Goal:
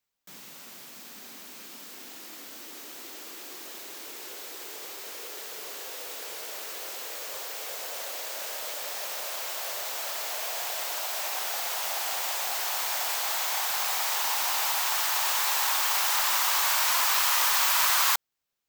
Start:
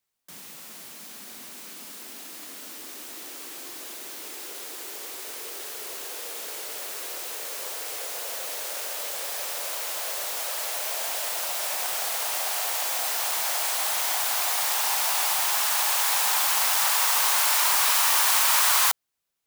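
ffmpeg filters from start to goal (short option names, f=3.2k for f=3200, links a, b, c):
-af "equalizer=f=9.7k:t=o:w=0.45:g=-7,asetrate=45938,aresample=44100,volume=-1.5dB"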